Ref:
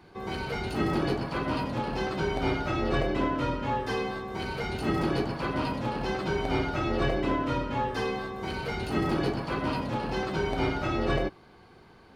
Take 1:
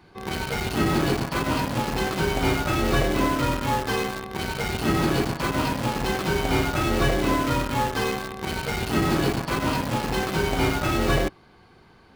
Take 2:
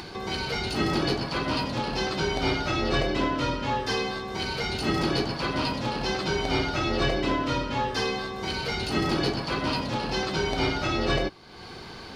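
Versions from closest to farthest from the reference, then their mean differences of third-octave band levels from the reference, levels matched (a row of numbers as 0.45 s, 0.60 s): 2, 1; 3.0 dB, 5.0 dB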